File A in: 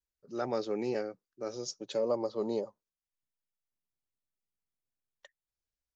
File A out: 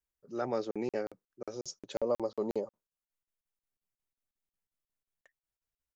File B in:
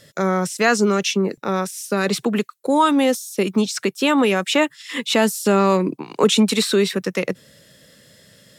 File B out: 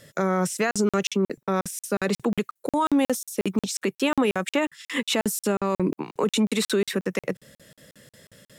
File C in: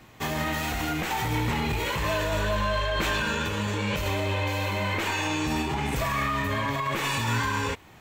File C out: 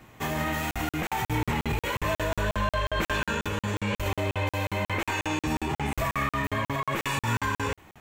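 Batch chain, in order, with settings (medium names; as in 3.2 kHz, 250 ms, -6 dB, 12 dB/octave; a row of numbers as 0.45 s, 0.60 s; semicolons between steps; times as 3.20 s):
peaking EQ 4.4 kHz -5.5 dB 0.94 oct; peak limiter -14.5 dBFS; crackling interface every 0.18 s, samples 2048, zero, from 0.71 s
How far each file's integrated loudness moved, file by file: -1.0 LU, -6.0 LU, -2.0 LU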